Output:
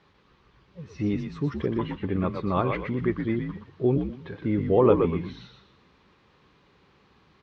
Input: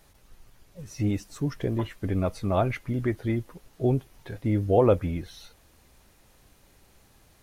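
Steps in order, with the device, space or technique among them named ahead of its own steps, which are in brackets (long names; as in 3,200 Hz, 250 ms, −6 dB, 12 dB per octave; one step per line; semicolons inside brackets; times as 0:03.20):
frequency-shifting delay pedal into a guitar cabinet (echo with shifted repeats 120 ms, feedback 34%, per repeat −70 Hz, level −5.5 dB; loudspeaker in its box 94–4,100 Hz, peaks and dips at 110 Hz −4 dB, 170 Hz +4 dB, 400 Hz +4 dB, 660 Hz −8 dB, 1,100 Hz +7 dB)
0:01.97–0:02.80: parametric band 5,700 Hz −5.5 dB 0.44 octaves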